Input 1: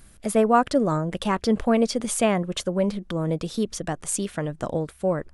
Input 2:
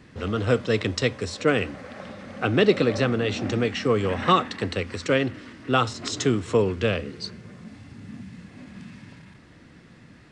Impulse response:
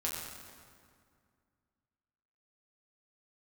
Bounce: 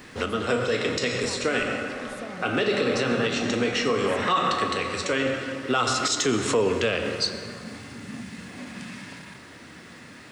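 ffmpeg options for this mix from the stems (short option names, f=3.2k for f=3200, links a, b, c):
-filter_complex "[0:a]acompressor=threshold=-22dB:ratio=6,volume=-19.5dB,asplit=2[a][b];[1:a]aemphasis=mode=production:type=riaa,volume=0.5dB,asplit=2[c][d];[d]volume=-9dB[e];[b]apad=whole_len=454968[f];[c][f]sidechaincompress=threshold=-54dB:ratio=8:attack=16:release=880[g];[2:a]atrim=start_sample=2205[h];[e][h]afir=irnorm=-1:irlink=0[i];[a][g][i]amix=inputs=3:normalize=0,highshelf=f=3.3k:g=-10,acontrast=74,alimiter=limit=-14dB:level=0:latency=1:release=89"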